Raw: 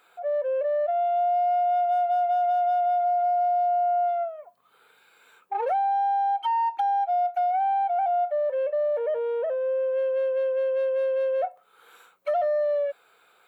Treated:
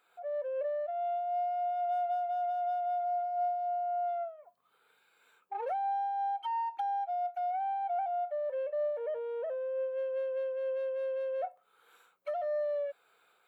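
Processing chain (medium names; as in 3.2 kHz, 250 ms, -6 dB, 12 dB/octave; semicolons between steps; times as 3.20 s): 2.14–4.37 s: band-stop 2.4 kHz, Q 7.1; random flutter of the level, depth 50%; trim -6.5 dB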